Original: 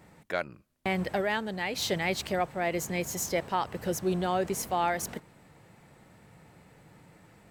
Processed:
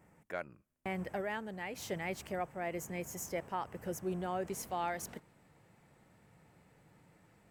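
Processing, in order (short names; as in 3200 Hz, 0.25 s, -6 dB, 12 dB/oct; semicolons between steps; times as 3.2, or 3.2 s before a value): bell 4000 Hz -12 dB 0.64 oct, from 4.48 s -2 dB; gain -8.5 dB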